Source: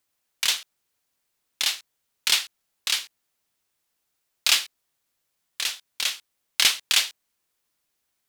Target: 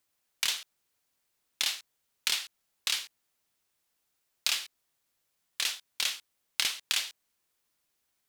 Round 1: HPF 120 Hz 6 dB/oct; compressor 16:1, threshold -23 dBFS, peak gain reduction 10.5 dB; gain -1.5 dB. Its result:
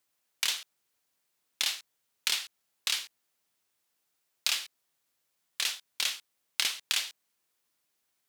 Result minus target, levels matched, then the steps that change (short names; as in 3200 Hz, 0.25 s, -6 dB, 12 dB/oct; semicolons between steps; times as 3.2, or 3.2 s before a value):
125 Hz band -3.0 dB
remove: HPF 120 Hz 6 dB/oct